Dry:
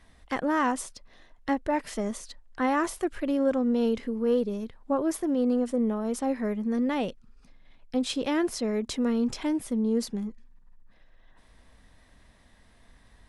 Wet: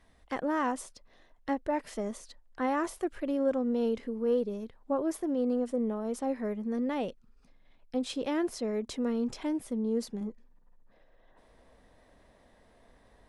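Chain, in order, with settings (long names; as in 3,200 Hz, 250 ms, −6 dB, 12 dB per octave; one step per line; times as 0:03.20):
parametric band 520 Hz +4.5 dB 1.9 octaves, from 0:10.21 +13 dB
level −7 dB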